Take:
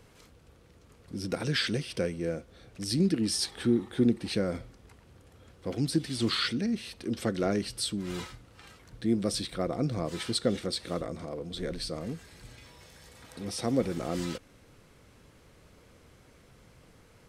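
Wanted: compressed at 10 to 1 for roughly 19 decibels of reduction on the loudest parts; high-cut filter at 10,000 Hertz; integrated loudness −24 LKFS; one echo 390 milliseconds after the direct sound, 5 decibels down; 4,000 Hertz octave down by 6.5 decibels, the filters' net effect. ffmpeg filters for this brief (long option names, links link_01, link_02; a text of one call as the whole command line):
ffmpeg -i in.wav -af "lowpass=10000,equalizer=frequency=4000:width_type=o:gain=-8,acompressor=threshold=-40dB:ratio=10,aecho=1:1:390:0.562,volume=20.5dB" out.wav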